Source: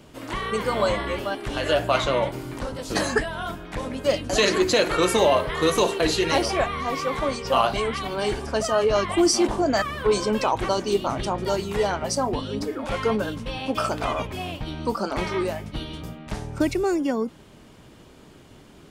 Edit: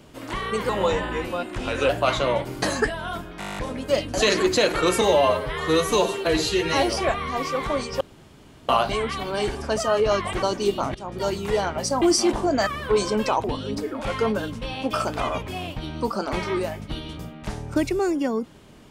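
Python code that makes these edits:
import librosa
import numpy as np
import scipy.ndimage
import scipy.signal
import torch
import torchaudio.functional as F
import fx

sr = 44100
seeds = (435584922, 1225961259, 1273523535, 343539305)

y = fx.edit(x, sr, fx.speed_span(start_s=0.69, length_s=1.07, speed=0.89),
    fx.cut(start_s=2.49, length_s=0.47),
    fx.stutter(start_s=3.73, slice_s=0.02, count=10),
    fx.stretch_span(start_s=5.17, length_s=1.27, factor=1.5),
    fx.insert_room_tone(at_s=7.53, length_s=0.68),
    fx.move(start_s=9.17, length_s=1.42, to_s=12.28),
    fx.fade_in_from(start_s=11.21, length_s=0.35, floor_db=-18.0), tone=tone)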